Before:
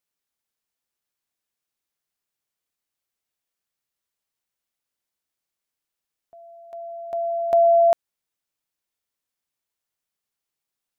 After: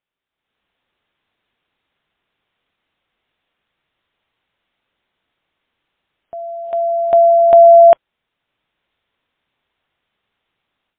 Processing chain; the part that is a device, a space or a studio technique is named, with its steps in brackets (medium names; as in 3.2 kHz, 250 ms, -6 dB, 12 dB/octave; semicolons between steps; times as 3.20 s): low-bitrate web radio (level rider gain up to 13.5 dB; peak limiter -6.5 dBFS, peak gain reduction 4.5 dB; trim +5 dB; MP3 24 kbps 8 kHz)